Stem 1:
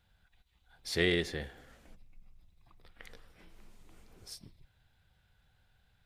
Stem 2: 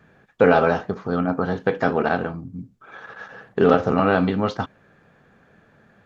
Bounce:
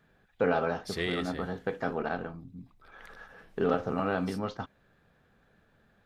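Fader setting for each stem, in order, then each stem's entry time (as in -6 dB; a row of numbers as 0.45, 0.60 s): -3.5, -11.5 dB; 0.00, 0.00 s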